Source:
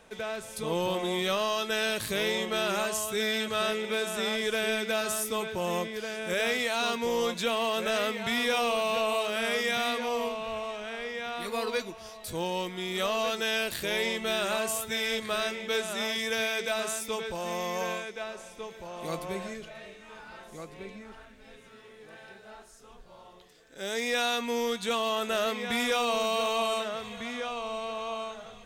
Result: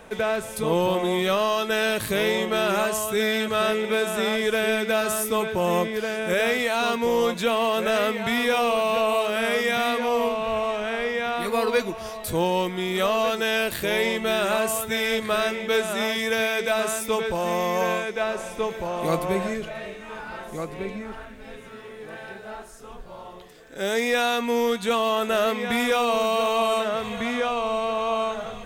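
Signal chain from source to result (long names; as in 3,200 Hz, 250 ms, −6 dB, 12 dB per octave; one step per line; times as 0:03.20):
parametric band 5,200 Hz −7 dB 1.9 octaves
in parallel at +0.5 dB: speech leveller 0.5 s
on the sum: level +1.5 dB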